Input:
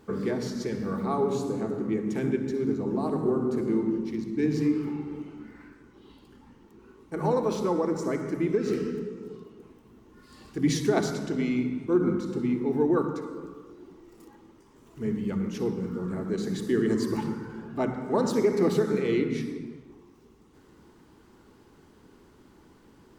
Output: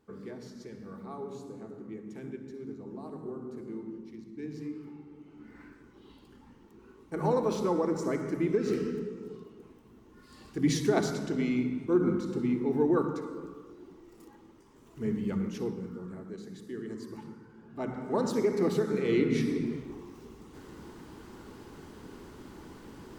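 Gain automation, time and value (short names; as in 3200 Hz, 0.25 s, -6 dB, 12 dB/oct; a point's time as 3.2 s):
5.18 s -14 dB
5.59 s -2 dB
15.38 s -2 dB
16.5 s -14.5 dB
17.57 s -14.5 dB
17.97 s -4 dB
18.93 s -4 dB
19.75 s +8 dB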